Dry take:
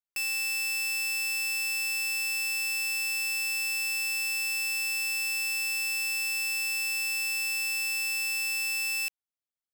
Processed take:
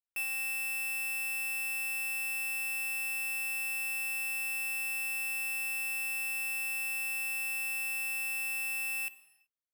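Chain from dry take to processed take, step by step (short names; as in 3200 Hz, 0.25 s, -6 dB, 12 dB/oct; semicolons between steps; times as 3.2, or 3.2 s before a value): band shelf 5600 Hz -12.5 dB 1.2 oct; non-linear reverb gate 0.4 s falling, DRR 10.5 dB; upward expander 1.5:1, over -42 dBFS; gain -2.5 dB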